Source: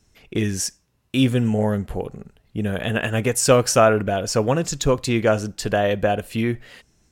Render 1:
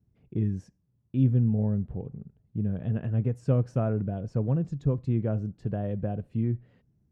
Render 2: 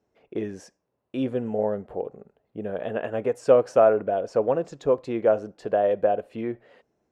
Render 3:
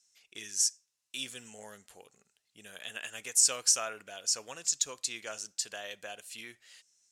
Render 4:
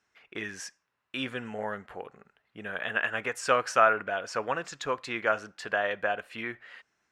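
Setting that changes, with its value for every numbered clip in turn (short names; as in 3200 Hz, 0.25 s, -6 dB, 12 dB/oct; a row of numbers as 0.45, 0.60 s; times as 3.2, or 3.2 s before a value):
band-pass, frequency: 130, 550, 7000, 1500 Hz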